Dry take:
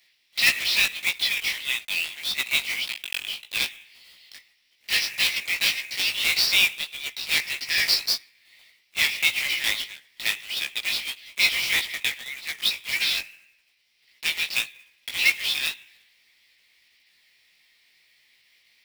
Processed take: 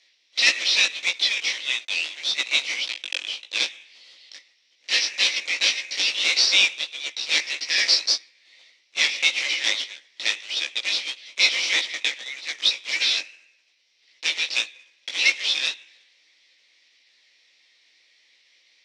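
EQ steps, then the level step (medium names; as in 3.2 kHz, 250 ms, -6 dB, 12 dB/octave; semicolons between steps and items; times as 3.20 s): cabinet simulation 310–7100 Hz, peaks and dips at 310 Hz +7 dB, 530 Hz +8 dB, 3.8 kHz +4 dB, 5.9 kHz +7 dB; 0.0 dB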